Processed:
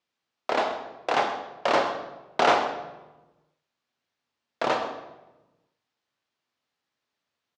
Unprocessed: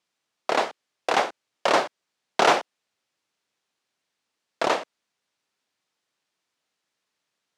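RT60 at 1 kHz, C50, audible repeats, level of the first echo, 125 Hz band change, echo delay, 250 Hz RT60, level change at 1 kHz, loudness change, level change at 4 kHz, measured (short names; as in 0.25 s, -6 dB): 1.0 s, 7.0 dB, 1, -14.5 dB, +0.5 dB, 0.131 s, 1.5 s, -1.0 dB, -2.0 dB, -3.5 dB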